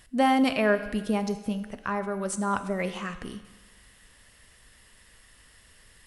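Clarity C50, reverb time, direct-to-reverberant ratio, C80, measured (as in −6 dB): 12.0 dB, 1.3 s, 10.0 dB, 13.5 dB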